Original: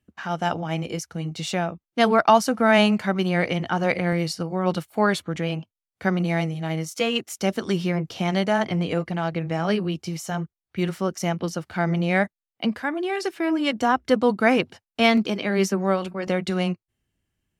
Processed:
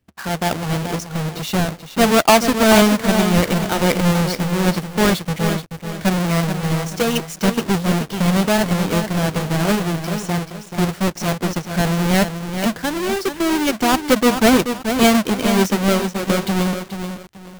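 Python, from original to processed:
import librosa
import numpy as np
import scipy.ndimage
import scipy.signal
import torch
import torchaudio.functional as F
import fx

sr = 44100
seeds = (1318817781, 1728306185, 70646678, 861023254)

y = fx.halfwave_hold(x, sr)
y = fx.echo_crushed(y, sr, ms=432, feedback_pct=35, bits=6, wet_db=-7.5)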